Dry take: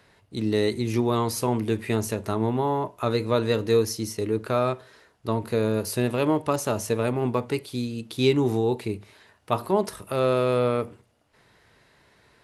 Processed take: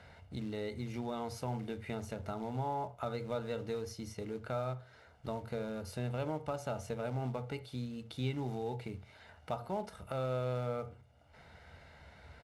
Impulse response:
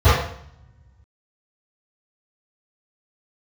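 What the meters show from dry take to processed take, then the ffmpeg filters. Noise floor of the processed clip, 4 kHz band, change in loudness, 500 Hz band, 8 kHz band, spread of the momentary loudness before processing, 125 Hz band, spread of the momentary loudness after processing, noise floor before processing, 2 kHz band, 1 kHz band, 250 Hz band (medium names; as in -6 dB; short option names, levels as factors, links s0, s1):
-60 dBFS, -15.5 dB, -14.0 dB, -15.0 dB, -19.0 dB, 8 LU, -10.5 dB, 14 LU, -62 dBFS, -13.5 dB, -12.0 dB, -15.0 dB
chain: -filter_complex "[0:a]acontrast=21,aecho=1:1:1.4:0.58,acompressor=threshold=0.00631:ratio=2,acrusher=bits=5:mode=log:mix=0:aa=0.000001,aemphasis=mode=reproduction:type=50fm,asplit=2[s0][s1];[1:a]atrim=start_sample=2205,afade=t=out:st=0.15:d=0.01,atrim=end_sample=7056[s2];[s1][s2]afir=irnorm=-1:irlink=0,volume=0.0119[s3];[s0][s3]amix=inputs=2:normalize=0,volume=0.631"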